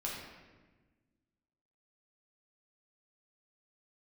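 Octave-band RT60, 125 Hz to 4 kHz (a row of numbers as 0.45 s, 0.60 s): 1.9 s, 2.0 s, 1.4 s, 1.2 s, 1.2 s, 0.90 s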